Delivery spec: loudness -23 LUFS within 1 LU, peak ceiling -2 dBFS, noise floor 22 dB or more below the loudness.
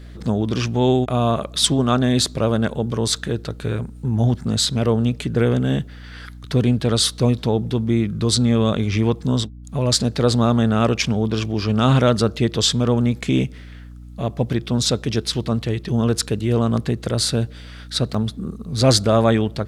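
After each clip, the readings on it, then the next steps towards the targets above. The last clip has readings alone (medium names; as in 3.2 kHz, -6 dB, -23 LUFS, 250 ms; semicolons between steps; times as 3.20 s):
dropouts 1; longest dropout 4.6 ms; hum 60 Hz; highest harmonic 300 Hz; hum level -36 dBFS; loudness -20.0 LUFS; peak level -2.0 dBFS; loudness target -23.0 LUFS
-> interpolate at 18.14 s, 4.6 ms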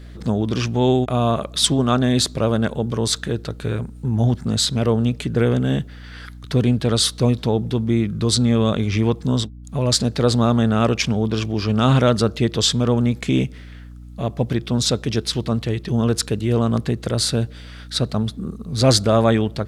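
dropouts 0; hum 60 Hz; highest harmonic 300 Hz; hum level -36 dBFS
-> de-hum 60 Hz, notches 5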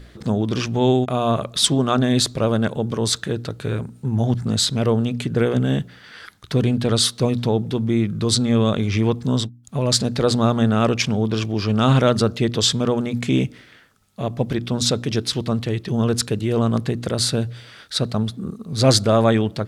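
hum not found; loudness -20.5 LUFS; peak level -2.0 dBFS; loudness target -23.0 LUFS
-> trim -2.5 dB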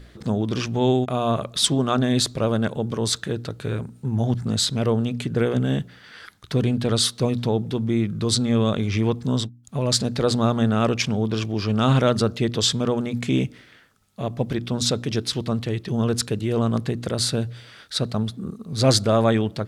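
loudness -23.0 LUFS; peak level -4.5 dBFS; noise floor -50 dBFS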